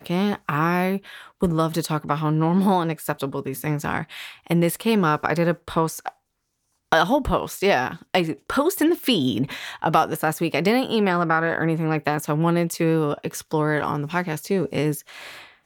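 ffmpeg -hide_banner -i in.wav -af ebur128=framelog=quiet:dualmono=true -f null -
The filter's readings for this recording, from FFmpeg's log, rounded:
Integrated loudness:
  I:         -19.6 LUFS
  Threshold: -29.8 LUFS
Loudness range:
  LRA:         2.2 LU
  Threshold: -39.7 LUFS
  LRA low:   -20.8 LUFS
  LRA high:  -18.6 LUFS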